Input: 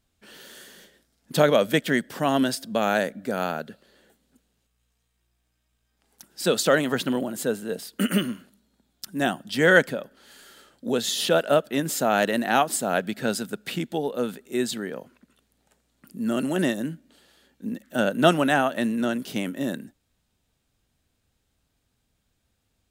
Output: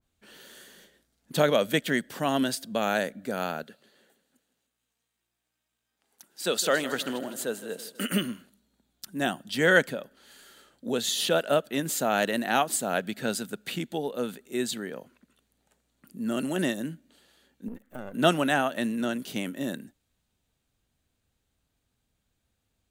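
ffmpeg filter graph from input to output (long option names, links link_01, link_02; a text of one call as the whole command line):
ffmpeg -i in.wav -filter_complex "[0:a]asettb=1/sr,asplit=3[link_01][link_02][link_03];[link_01]atrim=end=3.634[link_04];[link_02]atrim=start=3.63:end=8.12,asetpts=PTS-STARTPTS,afade=type=in:duration=0.004:curve=qsin,afade=type=out:start_time=4.486:duration=0.004:curve=qsin,highpass=frequency=340:poles=1,aecho=1:1:160|320|480|640|800:0.178|0.0907|0.0463|0.0236|0.012,atrim=end_sample=198009[link_05];[link_03]atrim=start=8.116[link_06];[link_04][link_05]acrossfade=duration=0.004:curve1=hsin:curve2=qsin[link_07];[link_07][link_06]acrossfade=duration=0.004:curve1=qsin:curve2=hsin,asettb=1/sr,asplit=3[link_08][link_09][link_10];[link_08]atrim=end=17.684[link_11];[link_09]atrim=start=17.68:end=18.14,asetpts=PTS-STARTPTS,afade=type=in:duration=0.004:curve=qsin,afade=type=out:start_time=0.456:duration=0.004:curve=qsin,aeval=exprs='if(lt(val(0),0),0.251*val(0),val(0))':channel_layout=same,equalizer=frequency=4800:width_type=o:width=2.4:gain=-9.5,acompressor=threshold=-29dB:ratio=5:attack=3.2:release=140:knee=1:detection=peak[link_12];[link_10]atrim=start=18.136[link_13];[link_11][link_12]acrossfade=duration=0.004:curve1=hsin:curve2=qsin[link_14];[link_14][link_13]acrossfade=duration=0.004:curve1=qsin:curve2=hsin,bandreject=frequency=5200:width=14,adynamicequalizer=threshold=0.0126:dfrequency=2000:dqfactor=0.7:tfrequency=2000:tqfactor=0.7:attack=5:release=100:ratio=0.375:range=1.5:mode=boostabove:tftype=highshelf,volume=-4dB" out.wav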